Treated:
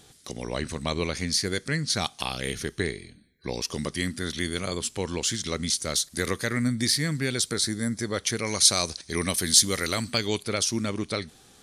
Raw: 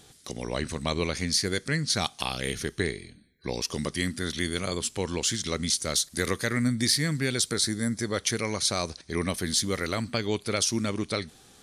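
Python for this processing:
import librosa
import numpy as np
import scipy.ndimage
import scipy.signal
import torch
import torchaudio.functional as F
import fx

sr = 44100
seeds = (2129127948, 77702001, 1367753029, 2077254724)

y = fx.high_shelf(x, sr, hz=3300.0, db=11.0, at=(8.46, 10.43))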